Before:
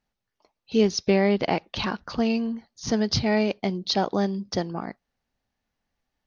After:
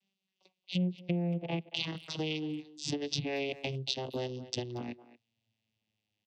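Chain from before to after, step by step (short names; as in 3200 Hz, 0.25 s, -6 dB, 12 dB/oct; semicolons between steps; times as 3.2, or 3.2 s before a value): vocoder on a gliding note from G3, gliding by -11 st; treble ducked by the level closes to 940 Hz, closed at -18 dBFS; resonant high shelf 2000 Hz +12 dB, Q 3; compressor 3:1, threshold -33 dBFS, peak gain reduction 14.5 dB; speakerphone echo 0.23 s, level -15 dB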